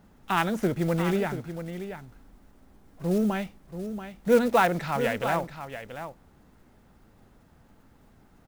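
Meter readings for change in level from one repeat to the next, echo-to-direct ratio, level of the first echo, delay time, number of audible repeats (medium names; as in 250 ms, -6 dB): no regular repeats, -10.0 dB, -10.0 dB, 683 ms, 1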